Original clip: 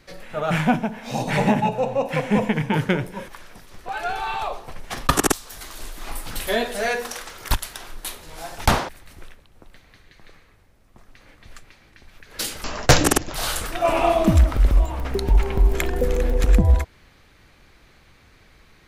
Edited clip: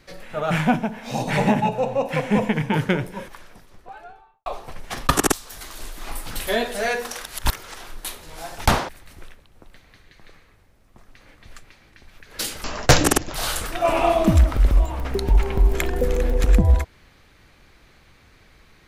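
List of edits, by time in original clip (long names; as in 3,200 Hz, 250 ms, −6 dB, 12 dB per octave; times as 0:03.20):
0:03.14–0:04.46: fade out and dull
0:07.24–0:07.77: reverse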